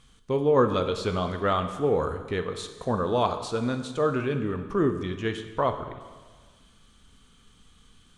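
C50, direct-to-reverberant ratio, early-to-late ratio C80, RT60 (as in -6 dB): 9.5 dB, 7.5 dB, 11.0 dB, 1.5 s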